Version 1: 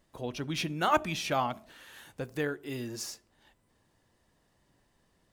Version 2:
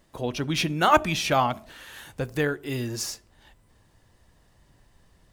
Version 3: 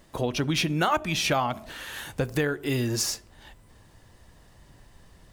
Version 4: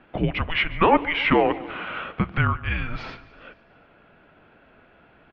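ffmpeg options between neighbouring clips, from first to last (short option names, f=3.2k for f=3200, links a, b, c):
-af "asubboost=boost=2.5:cutoff=140,volume=7.5dB"
-af "acompressor=threshold=-29dB:ratio=4,volume=6dB"
-af "aecho=1:1:145|290|435|580|725:0.112|0.0651|0.0377|0.0219|0.0127,highpass=f=400:t=q:w=0.5412,highpass=f=400:t=q:w=1.307,lowpass=f=3.1k:t=q:w=0.5176,lowpass=f=3.1k:t=q:w=0.7071,lowpass=f=3.1k:t=q:w=1.932,afreqshift=-330,volume=7.5dB"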